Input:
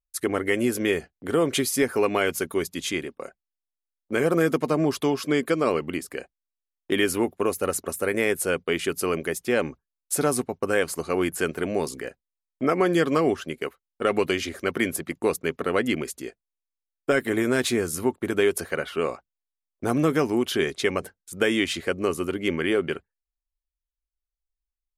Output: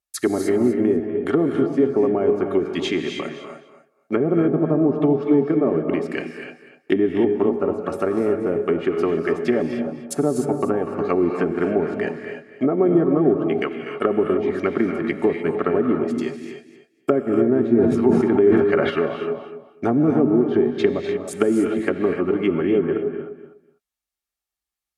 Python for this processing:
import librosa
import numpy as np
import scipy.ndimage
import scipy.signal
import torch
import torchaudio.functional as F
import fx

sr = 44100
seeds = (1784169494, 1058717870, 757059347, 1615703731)

p1 = fx.env_lowpass_down(x, sr, base_hz=490.0, full_db=-20.5)
p2 = fx.highpass(p1, sr, hz=230.0, slope=6)
p3 = fx.notch_comb(p2, sr, f0_hz=500.0)
p4 = p3 + fx.echo_feedback(p3, sr, ms=247, feedback_pct=18, wet_db=-11.5, dry=0)
p5 = fx.rev_gated(p4, sr, seeds[0], gate_ms=330, shape='rising', drr_db=5.0)
p6 = fx.sustainer(p5, sr, db_per_s=32.0, at=(17.77, 18.89), fade=0.02)
y = p6 * librosa.db_to_amplitude(8.5)